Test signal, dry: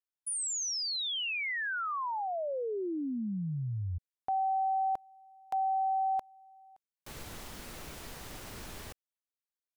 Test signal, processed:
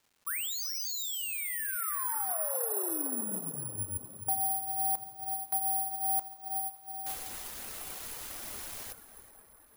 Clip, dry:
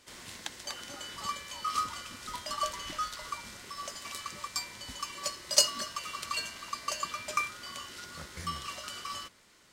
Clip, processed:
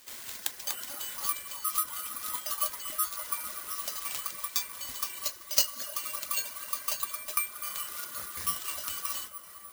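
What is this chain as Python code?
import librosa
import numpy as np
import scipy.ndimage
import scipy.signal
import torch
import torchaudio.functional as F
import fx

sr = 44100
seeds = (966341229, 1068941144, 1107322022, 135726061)

p1 = fx.low_shelf(x, sr, hz=390.0, db=-7.5)
p2 = fx.rev_plate(p1, sr, seeds[0], rt60_s=4.6, hf_ratio=0.35, predelay_ms=0, drr_db=4.5)
p3 = fx.dereverb_blind(p2, sr, rt60_s=0.76)
p4 = fx.peak_eq(p3, sr, hz=150.0, db=-6.5, octaves=0.57)
p5 = fx.rider(p4, sr, range_db=4, speed_s=0.5)
p6 = (np.kron(p5[::4], np.eye(4)[0]) * 4)[:len(p5)]
p7 = p6 + fx.echo_single(p6, sr, ms=384, db=-20.0, dry=0)
p8 = fx.dmg_crackle(p7, sr, seeds[1], per_s=520.0, level_db=-53.0)
y = p8 * librosa.db_to_amplitude(-3.5)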